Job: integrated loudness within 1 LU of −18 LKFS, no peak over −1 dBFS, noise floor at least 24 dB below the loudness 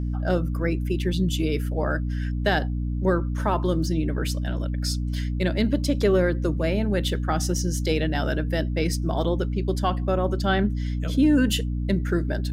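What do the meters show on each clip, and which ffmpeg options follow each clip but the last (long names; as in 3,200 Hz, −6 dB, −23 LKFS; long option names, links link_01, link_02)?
mains hum 60 Hz; hum harmonics up to 300 Hz; level of the hum −24 dBFS; integrated loudness −24.5 LKFS; sample peak −8.5 dBFS; target loudness −18.0 LKFS
→ -af "bandreject=frequency=60:width_type=h:width=4,bandreject=frequency=120:width_type=h:width=4,bandreject=frequency=180:width_type=h:width=4,bandreject=frequency=240:width_type=h:width=4,bandreject=frequency=300:width_type=h:width=4"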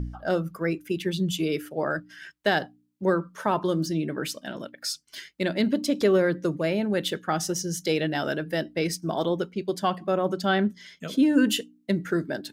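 mains hum none found; integrated loudness −26.5 LKFS; sample peak −10.0 dBFS; target loudness −18.0 LKFS
→ -af "volume=8.5dB"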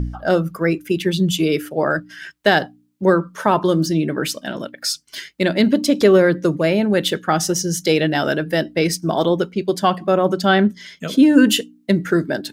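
integrated loudness −18.0 LKFS; sample peak −1.5 dBFS; background noise floor −55 dBFS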